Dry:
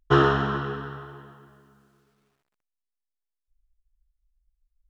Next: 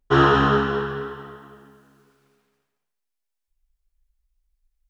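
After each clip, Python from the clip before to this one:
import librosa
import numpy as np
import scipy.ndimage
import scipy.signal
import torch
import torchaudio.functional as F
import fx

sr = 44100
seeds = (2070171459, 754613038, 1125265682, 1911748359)

y = fx.low_shelf(x, sr, hz=110.0, db=-6.5)
y = y + 10.0 ** (-7.0 / 20.0) * np.pad(y, (int(225 * sr / 1000.0), 0))[:len(y)]
y = fx.rev_gated(y, sr, seeds[0], gate_ms=320, shape='falling', drr_db=-3.0)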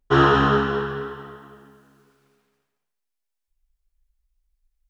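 y = x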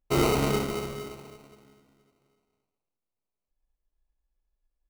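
y = fx.sample_hold(x, sr, seeds[1], rate_hz=1700.0, jitter_pct=0)
y = F.gain(torch.from_numpy(y), -7.5).numpy()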